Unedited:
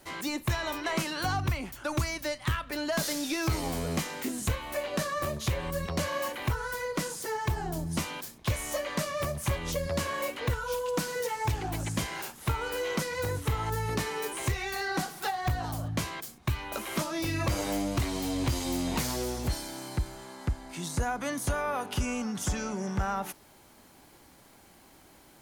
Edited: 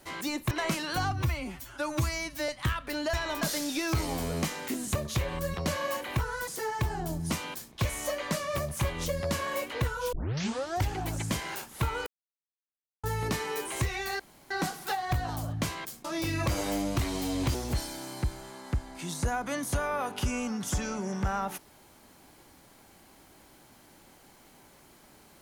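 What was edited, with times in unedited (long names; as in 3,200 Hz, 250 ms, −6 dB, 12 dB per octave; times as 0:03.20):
0:00.51–0:00.79: move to 0:02.96
0:01.40–0:02.31: time-stretch 1.5×
0:04.50–0:05.27: remove
0:06.79–0:07.14: remove
0:10.79: tape start 0.79 s
0:12.73–0:13.70: silence
0:14.86: splice in room tone 0.31 s
0:16.40–0:17.05: remove
0:18.55–0:19.29: remove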